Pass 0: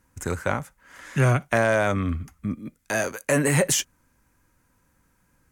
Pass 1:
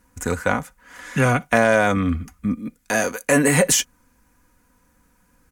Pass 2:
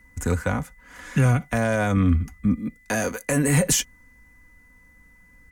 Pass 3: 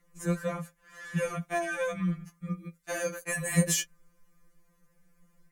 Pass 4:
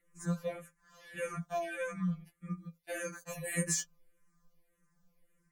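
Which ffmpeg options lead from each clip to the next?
ffmpeg -i in.wav -af "aecho=1:1:4.1:0.49,volume=4dB" out.wav
ffmpeg -i in.wav -filter_complex "[0:a]lowshelf=frequency=180:gain=11,acrossover=split=160|6000[link_01][link_02][link_03];[link_02]alimiter=limit=-12.5dB:level=0:latency=1:release=76[link_04];[link_01][link_04][link_03]amix=inputs=3:normalize=0,aeval=exprs='val(0)+0.00282*sin(2*PI*2000*n/s)':channel_layout=same,volume=-3dB" out.wav
ffmpeg -i in.wav -af "afftfilt=real='re*2.83*eq(mod(b,8),0)':imag='im*2.83*eq(mod(b,8),0)':win_size=2048:overlap=0.75,volume=-4.5dB" out.wav
ffmpeg -i in.wav -filter_complex "[0:a]asplit=2[link_01][link_02];[link_02]afreqshift=-1.7[link_03];[link_01][link_03]amix=inputs=2:normalize=1,volume=-3.5dB" out.wav

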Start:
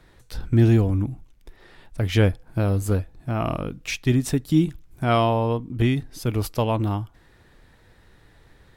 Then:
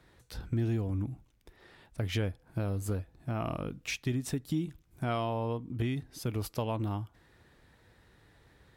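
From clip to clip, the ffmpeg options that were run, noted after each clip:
ffmpeg -i in.wav -af "highpass=49,acompressor=threshold=-24dB:ratio=3,volume=-6dB" out.wav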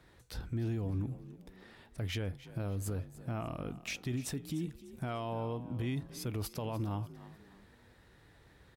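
ffmpeg -i in.wav -filter_complex "[0:a]alimiter=level_in=5dB:limit=-24dB:level=0:latency=1:release=41,volume=-5dB,asplit=4[link_01][link_02][link_03][link_04];[link_02]adelay=298,afreqshift=46,volume=-16dB[link_05];[link_03]adelay=596,afreqshift=92,volume=-25.1dB[link_06];[link_04]adelay=894,afreqshift=138,volume=-34.2dB[link_07];[link_01][link_05][link_06][link_07]amix=inputs=4:normalize=0" out.wav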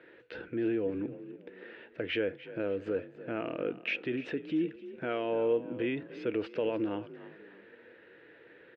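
ffmpeg -i in.wav -af "highpass=330,equalizer=frequency=330:width_type=q:width=4:gain=7,equalizer=frequency=480:width_type=q:width=4:gain=10,equalizer=frequency=780:width_type=q:width=4:gain=-8,equalizer=frequency=1100:width_type=q:width=4:gain=-9,equalizer=frequency=1600:width_type=q:width=4:gain=6,equalizer=frequency=2700:width_type=q:width=4:gain=6,lowpass=frequency=2800:width=0.5412,lowpass=frequency=2800:width=1.3066,volume=6dB" out.wav

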